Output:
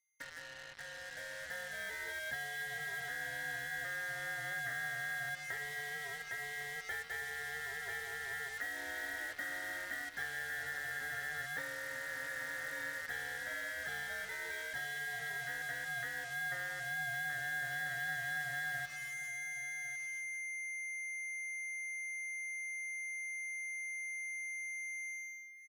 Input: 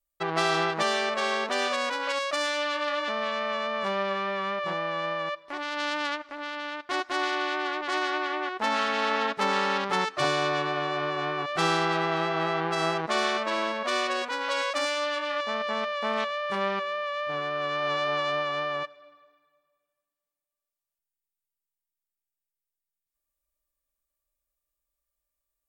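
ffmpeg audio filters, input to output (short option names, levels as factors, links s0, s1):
-filter_complex "[0:a]afftfilt=real='real(if(lt(b,960),b+48*(1-2*mod(floor(b/48),2)),b),0)':imag='imag(if(lt(b,960),b+48*(1-2*mod(floor(b/48),2)),b),0)':win_size=2048:overlap=0.75,aeval=exprs='val(0)+0.0126*sin(2*PI*2100*n/s)':c=same,asplit=3[s0][s1][s2];[s0]bandpass=f=530:t=q:w=8,volume=1[s3];[s1]bandpass=f=1840:t=q:w=8,volume=0.501[s4];[s2]bandpass=f=2480:t=q:w=8,volume=0.355[s5];[s3][s4][s5]amix=inputs=3:normalize=0,bandreject=f=73.76:t=h:w=4,bandreject=f=147.52:t=h:w=4,bandreject=f=221.28:t=h:w=4,bandreject=f=295.04:t=h:w=4,bandreject=f=368.8:t=h:w=4,bandreject=f=442.56:t=h:w=4,bandreject=f=516.32:t=h:w=4,bandreject=f=590.08:t=h:w=4,bandreject=f=663.84:t=h:w=4,bandreject=f=737.6:t=h:w=4,bandreject=f=811.36:t=h:w=4,bandreject=f=885.12:t=h:w=4,bandreject=f=958.88:t=h:w=4,bandreject=f=1032.64:t=h:w=4,bandreject=f=1106.4:t=h:w=4,bandreject=f=1180.16:t=h:w=4,bandreject=f=1253.92:t=h:w=4,bandreject=f=1327.68:t=h:w=4,bandreject=f=1401.44:t=h:w=4,acompressor=threshold=0.00282:ratio=16,asuperstop=centerf=2700:order=20:qfactor=4,dynaudnorm=f=810:g=3:m=2.66,equalizer=f=250:t=o:w=1:g=5,equalizer=f=500:t=o:w=1:g=-8,equalizer=f=1000:t=o:w=1:g=11,equalizer=f=2000:t=o:w=1:g=-6,equalizer=f=4000:t=o:w=1:g=-7,acrusher=bits=8:mix=0:aa=0.5,equalizer=f=350:w=0.68:g=-12,asplit=2[s6][s7];[s7]aecho=0:1:1102:0.237[s8];[s6][s8]amix=inputs=2:normalize=0,volume=2.99"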